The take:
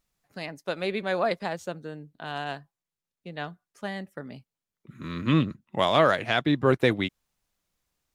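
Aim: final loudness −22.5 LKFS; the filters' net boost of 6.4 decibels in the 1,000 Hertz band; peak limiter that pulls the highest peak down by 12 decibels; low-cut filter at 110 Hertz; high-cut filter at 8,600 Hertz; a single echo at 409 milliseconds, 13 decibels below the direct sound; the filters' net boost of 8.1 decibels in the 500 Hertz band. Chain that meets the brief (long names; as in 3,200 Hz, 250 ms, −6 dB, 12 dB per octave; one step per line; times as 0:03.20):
high-pass filter 110 Hz
low-pass filter 8,600 Hz
parametric band 500 Hz +8.5 dB
parametric band 1,000 Hz +5.5 dB
brickwall limiter −14 dBFS
single-tap delay 409 ms −13 dB
level +4.5 dB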